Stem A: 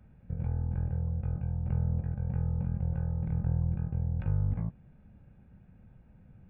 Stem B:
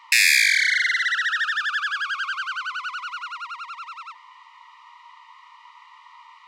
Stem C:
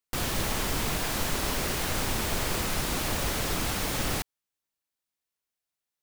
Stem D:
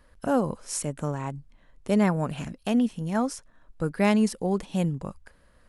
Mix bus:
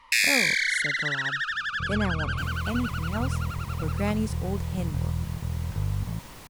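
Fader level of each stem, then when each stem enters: +0.5, -5.5, -16.5, -6.5 dB; 1.50, 0.00, 2.25, 0.00 s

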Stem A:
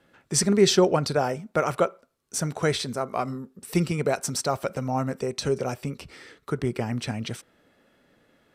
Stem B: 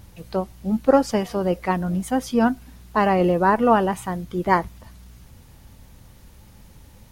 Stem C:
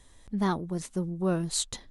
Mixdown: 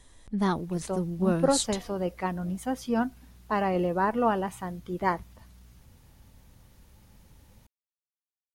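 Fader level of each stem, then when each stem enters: off, -8.0 dB, +1.0 dB; off, 0.55 s, 0.00 s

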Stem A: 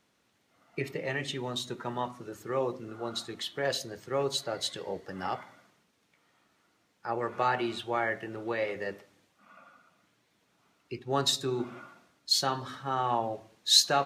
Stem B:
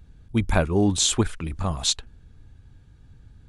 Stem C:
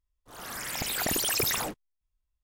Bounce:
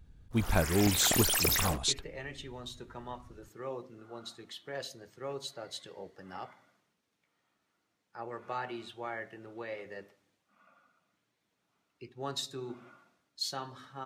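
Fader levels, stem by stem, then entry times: -9.5, -7.0, -1.0 dB; 1.10, 0.00, 0.05 s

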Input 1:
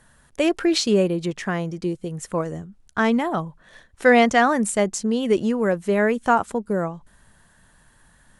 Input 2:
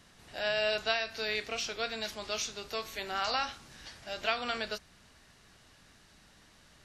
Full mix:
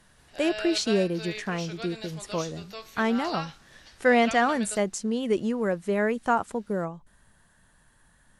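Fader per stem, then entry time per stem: -5.5, -4.5 dB; 0.00, 0.00 s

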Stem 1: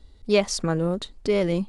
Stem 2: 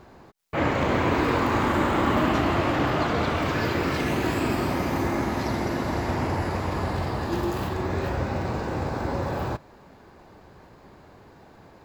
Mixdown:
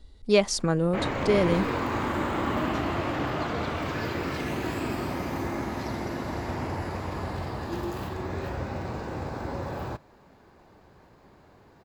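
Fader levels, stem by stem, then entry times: -0.5, -5.5 dB; 0.00, 0.40 s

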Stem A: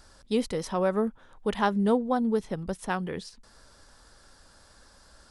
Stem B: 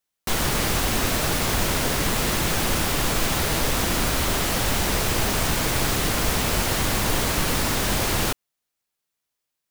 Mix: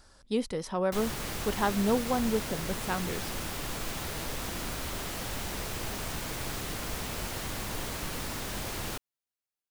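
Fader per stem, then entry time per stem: -3.0, -13.0 dB; 0.00, 0.65 s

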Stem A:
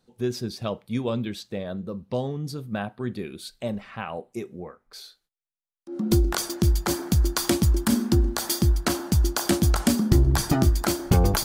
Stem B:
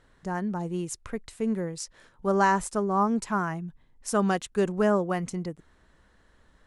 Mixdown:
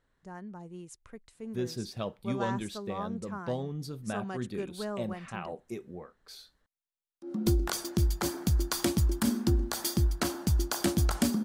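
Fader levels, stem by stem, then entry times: -6.0, -13.5 dB; 1.35, 0.00 s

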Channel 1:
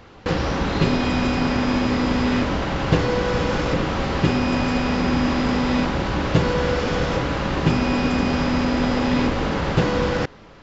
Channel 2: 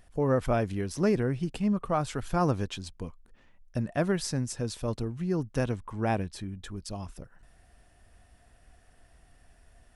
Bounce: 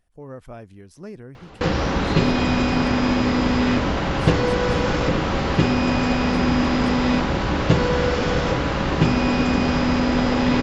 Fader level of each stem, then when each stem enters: +1.0, -12.0 dB; 1.35, 0.00 s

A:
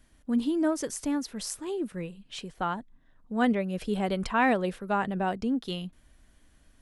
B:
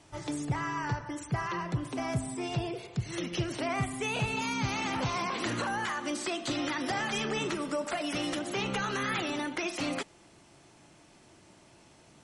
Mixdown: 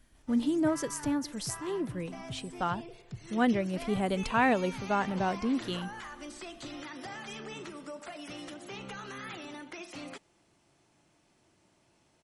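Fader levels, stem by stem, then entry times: -1.5, -10.5 dB; 0.00, 0.15 s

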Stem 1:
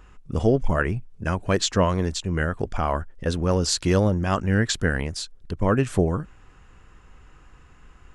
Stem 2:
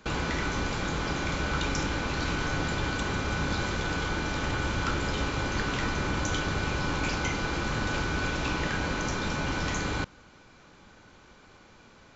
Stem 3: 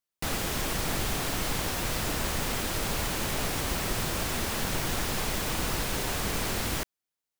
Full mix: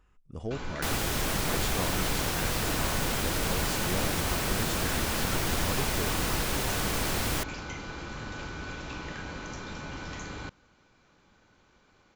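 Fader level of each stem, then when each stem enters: -15.5, -9.0, +0.5 dB; 0.00, 0.45, 0.60 s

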